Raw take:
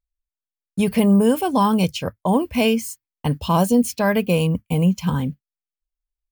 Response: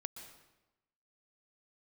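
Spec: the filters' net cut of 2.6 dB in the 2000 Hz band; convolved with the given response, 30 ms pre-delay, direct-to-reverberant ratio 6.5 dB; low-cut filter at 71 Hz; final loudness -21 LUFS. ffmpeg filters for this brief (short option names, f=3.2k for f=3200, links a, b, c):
-filter_complex "[0:a]highpass=71,equalizer=f=2k:t=o:g=-3.5,asplit=2[a][b];[1:a]atrim=start_sample=2205,adelay=30[c];[b][c]afir=irnorm=-1:irlink=0,volume=-4dB[d];[a][d]amix=inputs=2:normalize=0,volume=-2dB"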